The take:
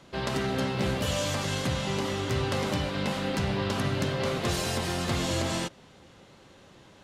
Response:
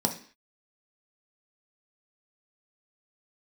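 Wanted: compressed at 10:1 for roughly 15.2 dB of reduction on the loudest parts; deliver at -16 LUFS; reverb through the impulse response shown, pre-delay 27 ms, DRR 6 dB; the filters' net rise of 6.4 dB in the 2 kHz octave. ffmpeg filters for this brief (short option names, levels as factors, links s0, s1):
-filter_complex "[0:a]equalizer=f=2000:t=o:g=8,acompressor=threshold=0.0112:ratio=10,asplit=2[s0][s1];[1:a]atrim=start_sample=2205,adelay=27[s2];[s1][s2]afir=irnorm=-1:irlink=0,volume=0.188[s3];[s0][s3]amix=inputs=2:normalize=0,volume=16.8"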